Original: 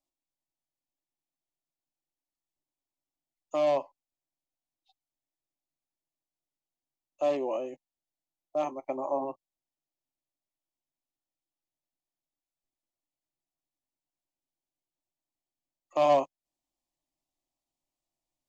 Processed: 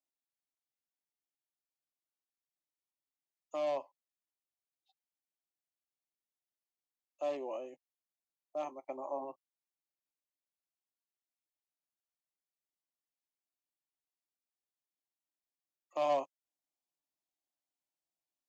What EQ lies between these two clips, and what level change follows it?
high-pass filter 310 Hz 6 dB per octave
−7.5 dB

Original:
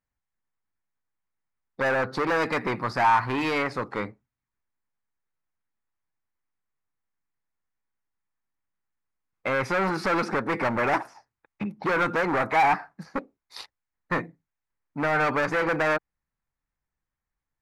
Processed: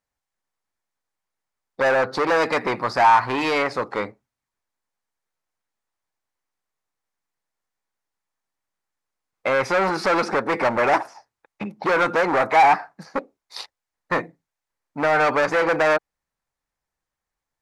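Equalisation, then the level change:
parametric band 610 Hz +9.5 dB 2 octaves
parametric band 5,700 Hz +9.5 dB 2.8 octaves
−3.0 dB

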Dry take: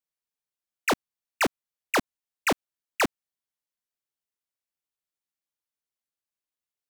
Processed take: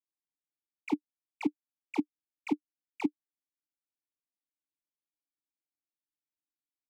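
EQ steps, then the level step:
formant filter u
parametric band 1,400 Hz −13.5 dB 2.2 octaves
+7.0 dB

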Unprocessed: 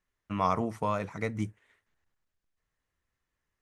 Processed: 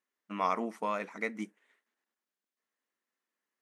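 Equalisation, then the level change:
dynamic equaliser 2,100 Hz, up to +7 dB, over −48 dBFS, Q 1.6
linear-phase brick-wall high-pass 190 Hz
−3.5 dB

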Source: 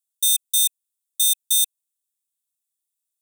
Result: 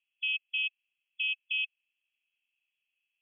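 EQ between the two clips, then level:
high-pass with resonance 2,600 Hz, resonance Q 11
linear-phase brick-wall low-pass 3,400 Hz
+5.0 dB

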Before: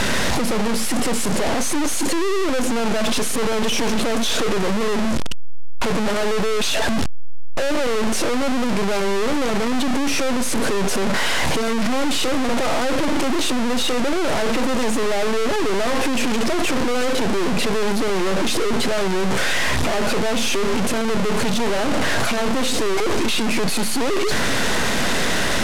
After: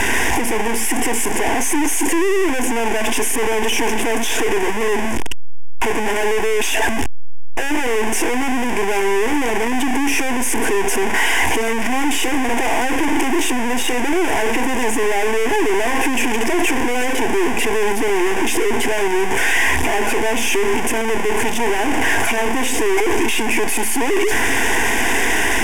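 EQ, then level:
low-shelf EQ 380 Hz −5 dB
phaser with its sweep stopped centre 850 Hz, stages 8
+7.5 dB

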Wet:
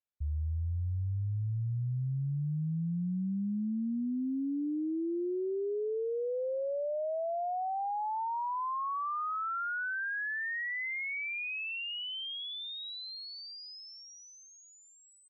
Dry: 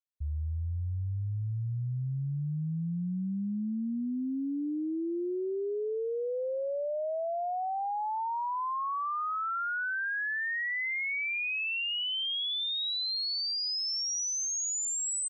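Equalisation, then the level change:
high-frequency loss of the air 340 metres
0.0 dB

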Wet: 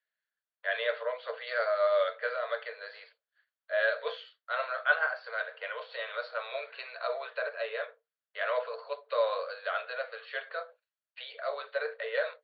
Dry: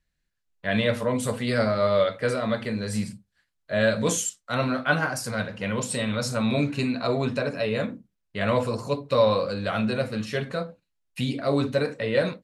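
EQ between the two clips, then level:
Chebyshev high-pass with heavy ripple 440 Hz, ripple 9 dB
Chebyshev low-pass with heavy ripple 4,600 Hz, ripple 6 dB
+1.5 dB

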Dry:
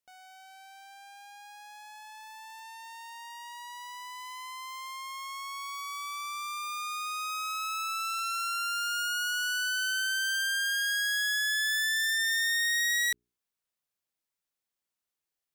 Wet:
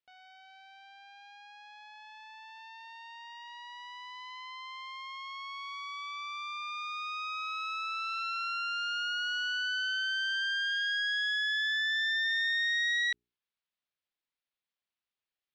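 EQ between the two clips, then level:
low-pass filter 3,900 Hz 24 dB per octave
high-shelf EQ 2,000 Hz +9 dB
−5.5 dB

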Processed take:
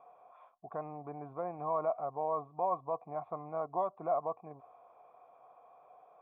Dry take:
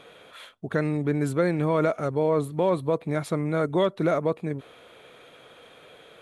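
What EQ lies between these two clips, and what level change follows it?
formant resonators in series a
parametric band 320 Hz −2.5 dB 2.2 octaves
mains-hum notches 50/100 Hz
+6.0 dB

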